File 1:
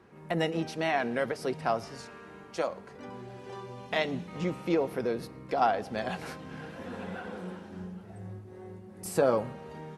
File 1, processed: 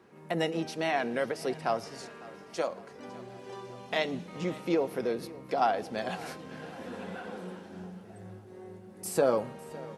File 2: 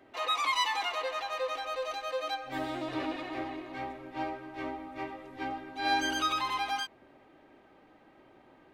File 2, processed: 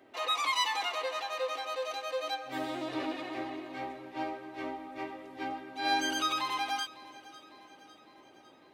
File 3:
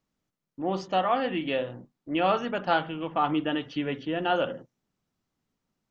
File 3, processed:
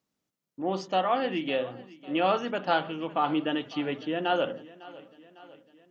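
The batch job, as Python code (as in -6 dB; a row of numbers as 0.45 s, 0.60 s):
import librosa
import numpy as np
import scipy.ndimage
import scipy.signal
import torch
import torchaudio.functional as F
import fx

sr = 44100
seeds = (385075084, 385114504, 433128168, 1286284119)

p1 = fx.highpass(x, sr, hz=260.0, slope=6)
p2 = fx.peak_eq(p1, sr, hz=1400.0, db=-4.0, octaves=2.6)
p3 = p2 + fx.echo_feedback(p2, sr, ms=553, feedback_pct=57, wet_db=-20, dry=0)
y = p3 * 10.0 ** (2.5 / 20.0)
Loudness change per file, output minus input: -0.5 LU, -0.5 LU, -0.5 LU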